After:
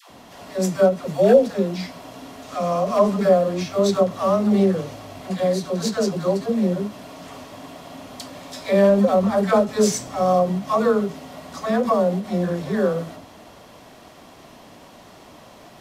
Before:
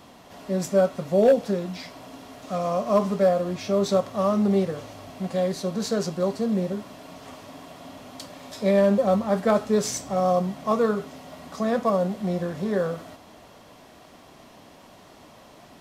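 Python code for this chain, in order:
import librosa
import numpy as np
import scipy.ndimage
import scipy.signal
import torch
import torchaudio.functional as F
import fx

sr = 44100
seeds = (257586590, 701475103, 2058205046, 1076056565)

y = fx.dispersion(x, sr, late='lows', ms=108.0, hz=590.0)
y = fx.end_taper(y, sr, db_per_s=210.0)
y = F.gain(torch.from_numpy(y), 4.0).numpy()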